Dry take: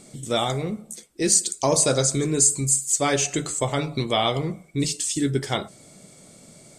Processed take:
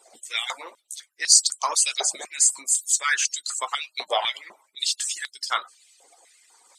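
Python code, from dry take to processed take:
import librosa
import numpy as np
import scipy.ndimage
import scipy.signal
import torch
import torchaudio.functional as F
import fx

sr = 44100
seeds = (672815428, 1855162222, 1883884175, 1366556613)

y = fx.hpss_only(x, sr, part='percussive')
y = fx.filter_held_highpass(y, sr, hz=4.0, low_hz=730.0, high_hz=4600.0)
y = y * 10.0 ** (-1.0 / 20.0)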